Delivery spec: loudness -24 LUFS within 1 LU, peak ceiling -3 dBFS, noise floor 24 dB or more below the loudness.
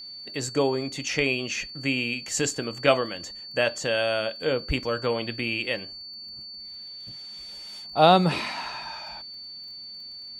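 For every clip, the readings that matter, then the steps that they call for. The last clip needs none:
tick rate 25 per s; steady tone 4.5 kHz; tone level -38 dBFS; loudness -25.5 LUFS; peak level -3.5 dBFS; loudness target -24.0 LUFS
-> de-click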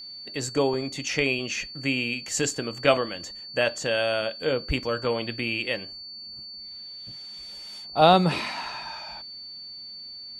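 tick rate 0 per s; steady tone 4.5 kHz; tone level -38 dBFS
-> band-stop 4.5 kHz, Q 30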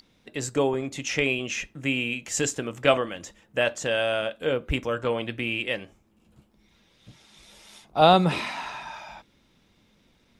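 steady tone not found; loudness -25.5 LUFS; peak level -3.5 dBFS; loudness target -24.0 LUFS
-> trim +1.5 dB; peak limiter -3 dBFS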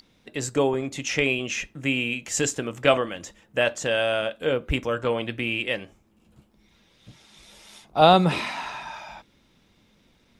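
loudness -24.5 LUFS; peak level -3.0 dBFS; noise floor -62 dBFS

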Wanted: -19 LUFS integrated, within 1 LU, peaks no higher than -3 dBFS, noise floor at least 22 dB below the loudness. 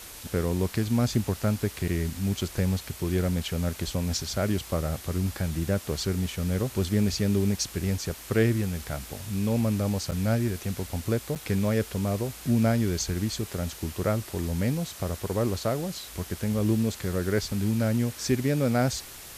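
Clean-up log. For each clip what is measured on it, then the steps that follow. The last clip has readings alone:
dropouts 2; longest dropout 8.2 ms; noise floor -44 dBFS; noise floor target -50 dBFS; loudness -28.0 LUFS; peak level -11.0 dBFS; loudness target -19.0 LUFS
-> interpolate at 10.11/11.35 s, 8.2 ms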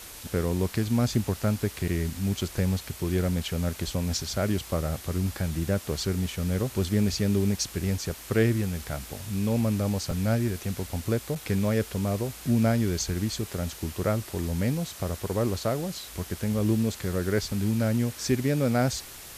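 dropouts 0; noise floor -44 dBFS; noise floor target -50 dBFS
-> noise reduction 6 dB, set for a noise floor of -44 dBFS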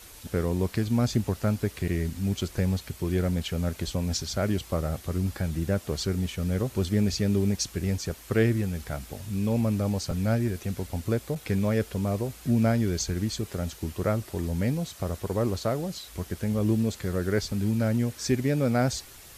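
noise floor -48 dBFS; noise floor target -50 dBFS
-> noise reduction 6 dB, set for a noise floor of -48 dBFS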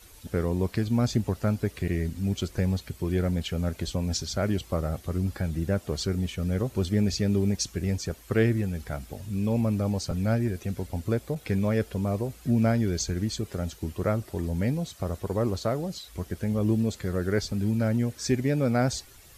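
noise floor -51 dBFS; loudness -28.0 LUFS; peak level -11.0 dBFS; loudness target -19.0 LUFS
-> trim +9 dB; peak limiter -3 dBFS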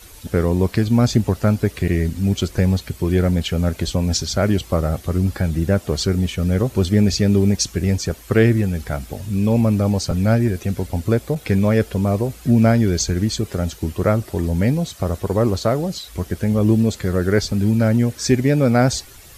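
loudness -19.0 LUFS; peak level -3.0 dBFS; noise floor -42 dBFS

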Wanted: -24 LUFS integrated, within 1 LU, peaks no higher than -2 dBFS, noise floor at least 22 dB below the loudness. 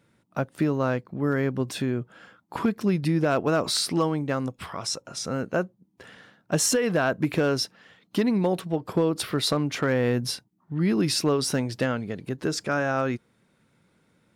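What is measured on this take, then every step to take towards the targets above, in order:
clipped samples 0.3%; clipping level -15.0 dBFS; loudness -26.0 LUFS; peak level -15.0 dBFS; loudness target -24.0 LUFS
-> clip repair -15 dBFS; trim +2 dB

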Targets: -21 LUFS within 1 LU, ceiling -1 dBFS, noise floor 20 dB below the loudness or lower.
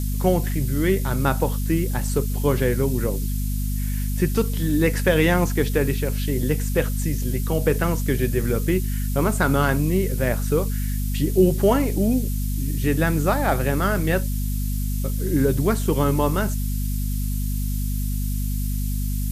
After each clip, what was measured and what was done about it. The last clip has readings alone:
hum 50 Hz; highest harmonic 250 Hz; hum level -22 dBFS; noise floor -24 dBFS; noise floor target -43 dBFS; loudness -23.0 LUFS; peak level -5.0 dBFS; loudness target -21.0 LUFS
-> de-hum 50 Hz, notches 5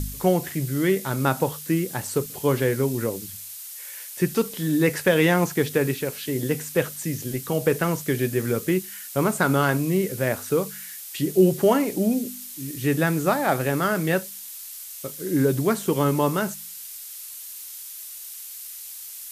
hum not found; noise floor -39 dBFS; noise floor target -44 dBFS
-> noise print and reduce 6 dB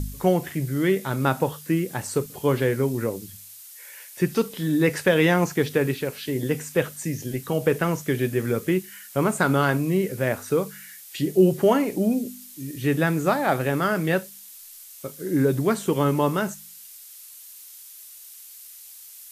noise floor -45 dBFS; loudness -23.5 LUFS; peak level -7.0 dBFS; loudness target -21.0 LUFS
-> trim +2.5 dB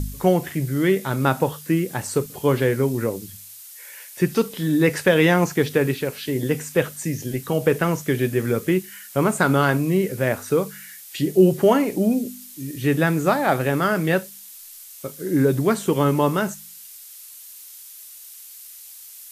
loudness -21.0 LUFS; peak level -4.5 dBFS; noise floor -42 dBFS

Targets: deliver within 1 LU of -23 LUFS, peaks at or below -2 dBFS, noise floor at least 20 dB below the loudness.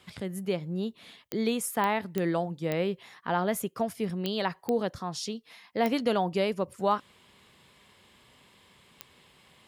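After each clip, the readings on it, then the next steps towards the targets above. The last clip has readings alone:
clicks found 8; loudness -30.5 LUFS; peak level -14.0 dBFS; loudness target -23.0 LUFS
-> de-click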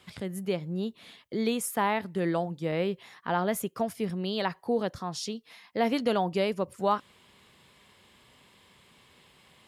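clicks found 0; loudness -30.5 LUFS; peak level -14.0 dBFS; loudness target -23.0 LUFS
-> trim +7.5 dB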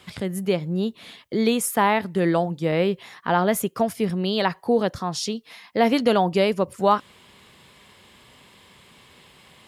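loudness -23.0 LUFS; peak level -6.5 dBFS; noise floor -53 dBFS

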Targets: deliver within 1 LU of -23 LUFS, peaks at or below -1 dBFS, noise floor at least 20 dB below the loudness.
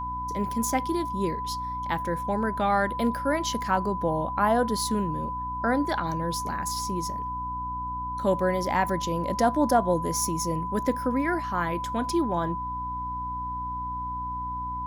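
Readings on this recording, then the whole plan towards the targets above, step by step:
hum 60 Hz; highest harmonic 300 Hz; hum level -37 dBFS; steady tone 1 kHz; tone level -30 dBFS; loudness -27.5 LUFS; peak level -10.0 dBFS; loudness target -23.0 LUFS
-> de-hum 60 Hz, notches 5; band-stop 1 kHz, Q 30; trim +4.5 dB

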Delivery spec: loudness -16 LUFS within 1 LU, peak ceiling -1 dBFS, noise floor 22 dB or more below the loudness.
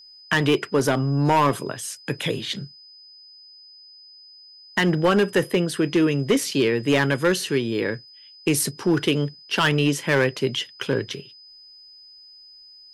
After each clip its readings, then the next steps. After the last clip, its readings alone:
clipped samples 0.8%; clipping level -12.5 dBFS; steady tone 5 kHz; tone level -45 dBFS; loudness -22.5 LUFS; peak level -12.5 dBFS; loudness target -16.0 LUFS
-> clip repair -12.5 dBFS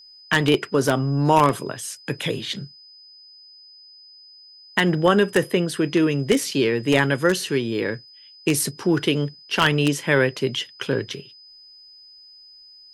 clipped samples 0.0%; steady tone 5 kHz; tone level -45 dBFS
-> band-stop 5 kHz, Q 30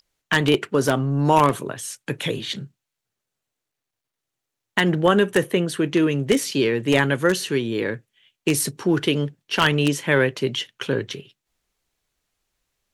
steady tone not found; loudness -21.5 LUFS; peak level -3.5 dBFS; loudness target -16.0 LUFS
-> trim +5.5 dB; peak limiter -1 dBFS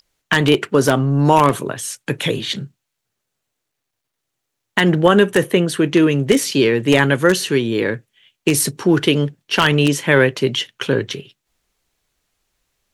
loudness -16.5 LUFS; peak level -1.0 dBFS; noise floor -78 dBFS

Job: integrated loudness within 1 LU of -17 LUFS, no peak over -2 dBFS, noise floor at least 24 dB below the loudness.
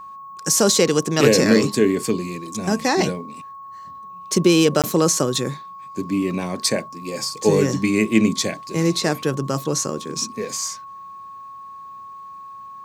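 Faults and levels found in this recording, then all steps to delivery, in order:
dropouts 1; longest dropout 17 ms; steady tone 1.1 kHz; tone level -35 dBFS; loudness -20.0 LUFS; peak level -1.0 dBFS; loudness target -17.0 LUFS
-> interpolate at 4.82 s, 17 ms; band-stop 1.1 kHz, Q 30; trim +3 dB; peak limiter -2 dBFS

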